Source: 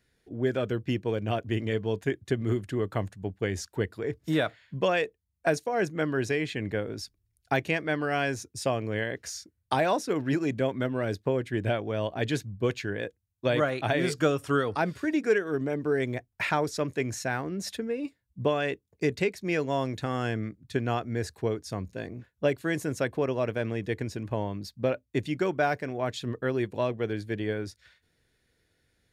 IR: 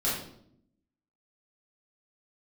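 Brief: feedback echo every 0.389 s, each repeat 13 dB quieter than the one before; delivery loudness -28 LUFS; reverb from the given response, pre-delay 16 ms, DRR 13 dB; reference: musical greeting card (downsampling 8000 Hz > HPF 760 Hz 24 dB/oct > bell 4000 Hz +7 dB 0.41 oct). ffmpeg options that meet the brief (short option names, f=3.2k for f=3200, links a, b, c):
-filter_complex "[0:a]aecho=1:1:389|778|1167:0.224|0.0493|0.0108,asplit=2[a][b];[1:a]atrim=start_sample=2205,adelay=16[c];[b][c]afir=irnorm=-1:irlink=0,volume=-22dB[d];[a][d]amix=inputs=2:normalize=0,aresample=8000,aresample=44100,highpass=f=760:w=0.5412,highpass=f=760:w=1.3066,equalizer=f=4k:t=o:w=0.41:g=7,volume=7.5dB"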